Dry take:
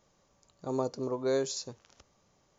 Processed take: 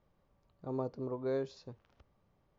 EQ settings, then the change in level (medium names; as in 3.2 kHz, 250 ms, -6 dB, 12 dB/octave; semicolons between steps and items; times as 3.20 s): distance through air 310 m; bass shelf 120 Hz +9.5 dB; -5.5 dB